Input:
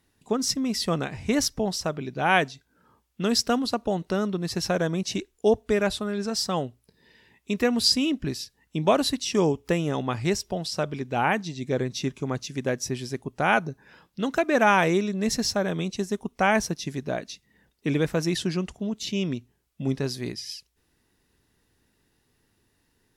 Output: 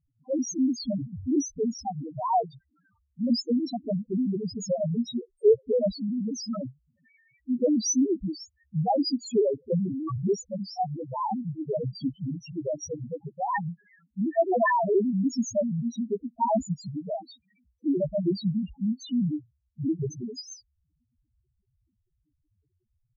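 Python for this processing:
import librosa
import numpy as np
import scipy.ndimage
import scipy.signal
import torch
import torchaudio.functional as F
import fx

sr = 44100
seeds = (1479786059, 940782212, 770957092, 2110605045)

y = fx.pitch_trill(x, sr, semitones=3.5, every_ms=97)
y = fx.spec_topn(y, sr, count=1)
y = y * 10.0 ** (8.0 / 20.0)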